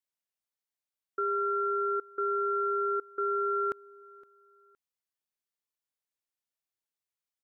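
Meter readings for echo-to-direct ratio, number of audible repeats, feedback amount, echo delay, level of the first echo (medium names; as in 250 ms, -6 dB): -22.5 dB, 2, 32%, 515 ms, -23.0 dB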